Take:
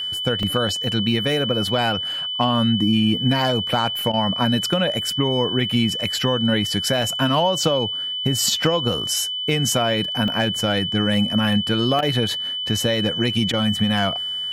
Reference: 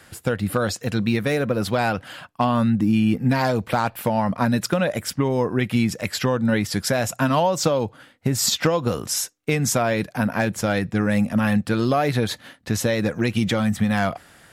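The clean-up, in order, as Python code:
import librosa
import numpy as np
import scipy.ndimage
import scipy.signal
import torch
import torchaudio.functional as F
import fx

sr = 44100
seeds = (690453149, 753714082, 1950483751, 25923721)

y = fx.notch(x, sr, hz=3000.0, q=30.0)
y = fx.fix_interpolate(y, sr, at_s=(0.43, 7.02, 10.28, 11.14, 11.99), length_ms=1.2)
y = fx.fix_interpolate(y, sr, at_s=(4.12, 12.01, 13.52), length_ms=13.0)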